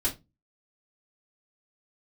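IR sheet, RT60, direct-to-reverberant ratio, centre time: 0.20 s, −5.5 dB, 15 ms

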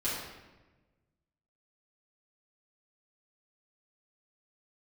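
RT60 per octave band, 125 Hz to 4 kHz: 1.9, 1.5, 1.3, 1.1, 1.0, 0.80 seconds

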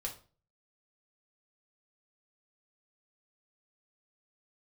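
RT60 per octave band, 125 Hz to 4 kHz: 0.60, 0.45, 0.40, 0.35, 0.30, 0.30 seconds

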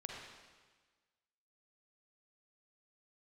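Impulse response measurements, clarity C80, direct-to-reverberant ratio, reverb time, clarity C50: 1.5 dB, −1.5 dB, 1.4 s, −0.5 dB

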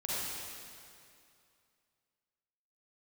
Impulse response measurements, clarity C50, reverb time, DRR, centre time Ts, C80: −6.5 dB, 2.5 s, −8.5 dB, 177 ms, −3.5 dB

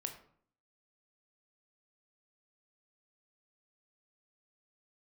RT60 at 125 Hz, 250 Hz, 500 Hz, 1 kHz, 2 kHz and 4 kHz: 0.70, 0.70, 0.60, 0.55, 0.45, 0.35 seconds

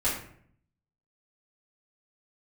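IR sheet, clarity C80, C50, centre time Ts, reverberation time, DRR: 8.0 dB, 4.0 dB, 39 ms, 0.60 s, −10.5 dB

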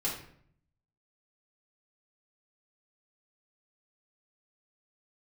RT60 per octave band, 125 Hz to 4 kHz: 1.0, 0.85, 0.65, 0.60, 0.55, 0.45 seconds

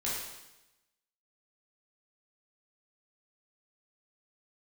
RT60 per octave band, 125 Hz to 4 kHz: 1.0, 1.0, 0.95, 0.95, 0.95, 0.95 seconds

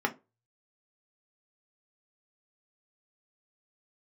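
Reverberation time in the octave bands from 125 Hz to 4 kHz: 0.60, 0.25, 0.30, 0.25, 0.20, 0.15 seconds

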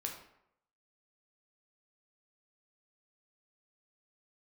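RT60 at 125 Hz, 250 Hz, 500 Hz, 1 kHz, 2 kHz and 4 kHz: 0.70, 0.70, 0.75, 0.75, 0.65, 0.50 seconds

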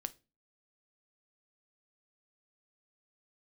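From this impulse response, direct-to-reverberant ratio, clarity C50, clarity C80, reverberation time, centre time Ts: 11.5 dB, 21.0 dB, 29.0 dB, 0.30 s, 3 ms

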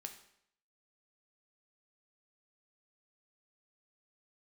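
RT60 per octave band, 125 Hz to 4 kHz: 0.70, 0.70, 0.70, 0.70, 0.70, 0.65 seconds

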